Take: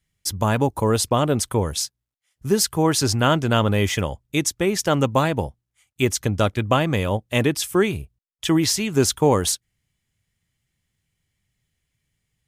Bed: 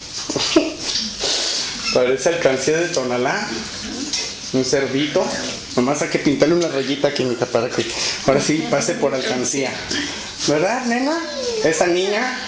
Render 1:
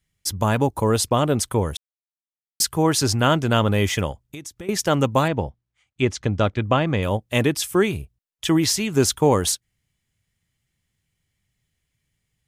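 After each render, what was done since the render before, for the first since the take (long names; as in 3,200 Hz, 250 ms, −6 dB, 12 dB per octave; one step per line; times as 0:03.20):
0:01.77–0:02.60: silence
0:04.11–0:04.69: downward compressor 10 to 1, threshold −32 dBFS
0:05.28–0:07.03: high-frequency loss of the air 120 metres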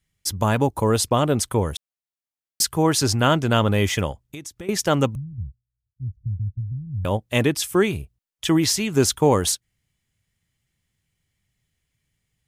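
0:05.15–0:07.05: inverse Chebyshev low-pass filter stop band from 560 Hz, stop band 70 dB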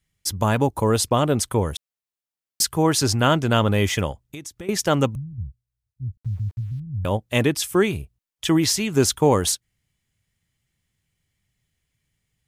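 0:06.17–0:06.80: centre clipping without the shift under −47.5 dBFS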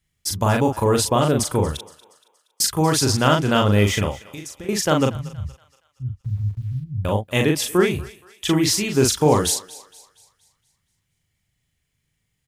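double-tracking delay 39 ms −3.5 dB
feedback echo with a high-pass in the loop 235 ms, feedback 46%, high-pass 610 Hz, level −18.5 dB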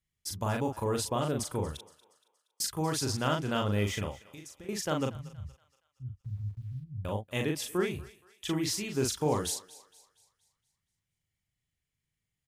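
level −12.5 dB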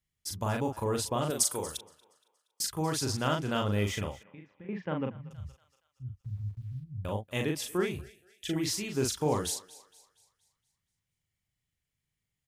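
0:01.30–0:01.78: bass and treble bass −11 dB, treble +13 dB
0:04.23–0:05.31: loudspeaker in its box 140–2,300 Hz, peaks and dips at 180 Hz +6 dB, 370 Hz −5 dB, 670 Hz −6 dB, 1,300 Hz −7 dB
0:08.01–0:08.56: Chebyshev band-stop filter 690–1,600 Hz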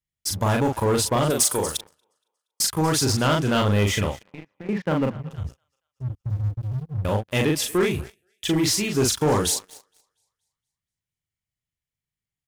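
leveller curve on the samples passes 3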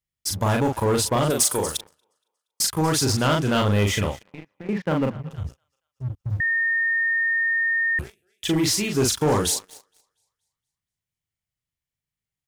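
0:06.40–0:07.99: beep over 1,830 Hz −19 dBFS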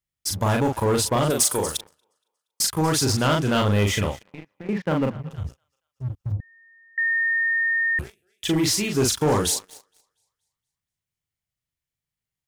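0:06.32–0:06.98: Bessel low-pass filter 630 Hz, order 8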